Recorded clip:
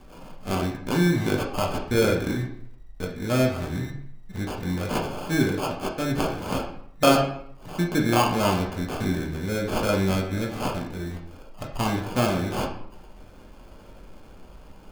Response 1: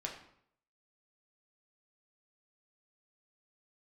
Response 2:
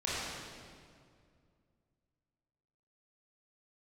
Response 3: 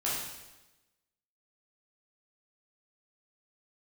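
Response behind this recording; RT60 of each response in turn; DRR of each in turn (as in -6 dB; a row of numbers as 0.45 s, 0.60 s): 1; 0.65 s, 2.2 s, 1.1 s; -0.5 dB, -9.0 dB, -8.0 dB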